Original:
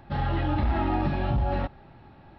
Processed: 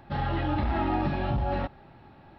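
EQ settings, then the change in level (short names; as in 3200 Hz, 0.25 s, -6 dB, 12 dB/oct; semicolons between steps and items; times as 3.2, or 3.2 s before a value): low shelf 110 Hz -5 dB; 0.0 dB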